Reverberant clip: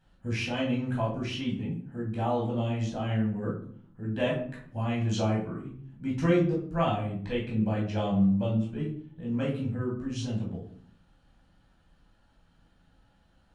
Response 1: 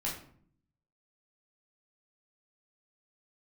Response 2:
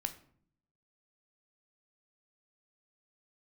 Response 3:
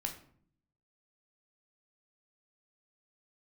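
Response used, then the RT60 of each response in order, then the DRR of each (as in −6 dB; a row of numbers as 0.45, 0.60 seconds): 1; 0.55, 0.60, 0.55 seconds; −5.5, 7.5, 2.5 decibels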